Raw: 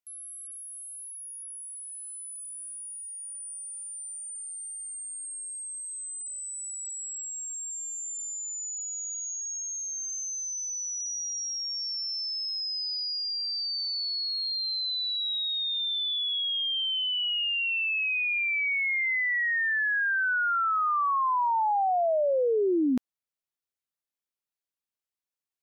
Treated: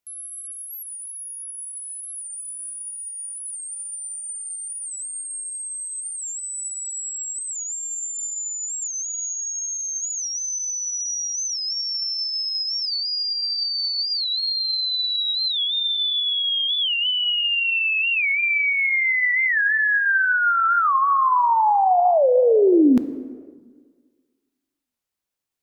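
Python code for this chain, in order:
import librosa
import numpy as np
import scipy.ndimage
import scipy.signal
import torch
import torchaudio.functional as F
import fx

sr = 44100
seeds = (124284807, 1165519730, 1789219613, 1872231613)

y = fx.low_shelf(x, sr, hz=450.0, db=5.0)
y = fx.rev_plate(y, sr, seeds[0], rt60_s=1.7, hf_ratio=0.6, predelay_ms=0, drr_db=11.5)
y = fx.record_warp(y, sr, rpm=45.0, depth_cents=160.0)
y = F.gain(torch.from_numpy(y), 6.5).numpy()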